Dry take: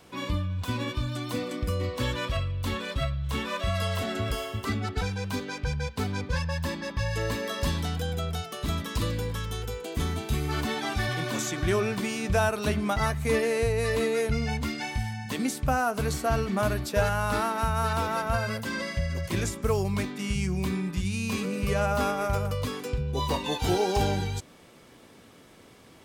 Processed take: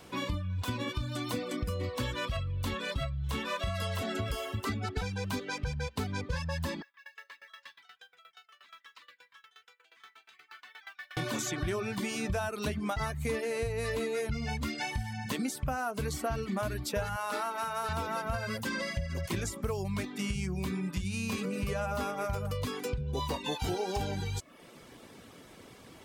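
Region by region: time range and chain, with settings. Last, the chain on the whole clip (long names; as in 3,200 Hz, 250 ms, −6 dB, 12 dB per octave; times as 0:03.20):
0:06.82–0:11.17: four-pole ladder band-pass 2,100 Hz, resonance 30% + noise that follows the level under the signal 23 dB + tremolo with a ramp in dB decaying 8.4 Hz, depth 18 dB
0:17.16–0:17.89: high-pass filter 360 Hz + double-tracking delay 44 ms −14 dB
whole clip: reverb reduction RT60 0.51 s; downward compressor 4 to 1, threshold −33 dBFS; level +2 dB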